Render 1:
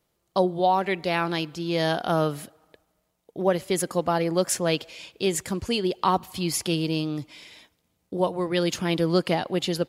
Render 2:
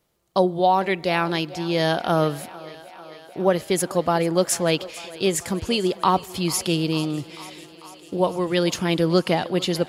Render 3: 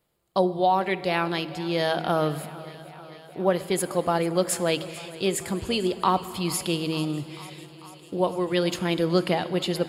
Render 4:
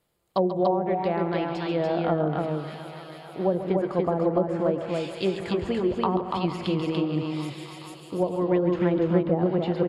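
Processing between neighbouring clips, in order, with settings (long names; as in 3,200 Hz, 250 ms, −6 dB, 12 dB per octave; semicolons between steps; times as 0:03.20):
feedback echo with a high-pass in the loop 445 ms, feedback 78%, high-pass 220 Hz, level −19 dB; level +3 dB
parametric band 5,900 Hz −12 dB 0.21 octaves; hum removal 80.12 Hz, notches 5; on a send at −14 dB: convolution reverb RT60 2.9 s, pre-delay 3 ms; on the sum: level −3 dB
treble cut that deepens with the level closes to 580 Hz, closed at −19 dBFS; on a send: loudspeakers that aren't time-aligned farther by 47 metres −11 dB, 99 metres −3 dB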